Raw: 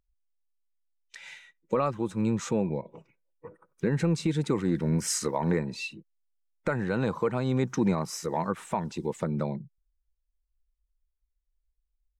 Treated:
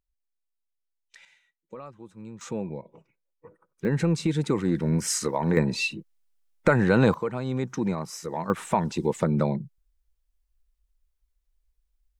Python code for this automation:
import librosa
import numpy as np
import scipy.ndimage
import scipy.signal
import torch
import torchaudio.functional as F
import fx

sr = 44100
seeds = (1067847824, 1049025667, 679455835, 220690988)

y = fx.gain(x, sr, db=fx.steps((0.0, -5.5), (1.25, -15.0), (2.41, -4.5), (3.85, 2.0), (5.57, 8.5), (7.14, -2.0), (8.5, 6.0)))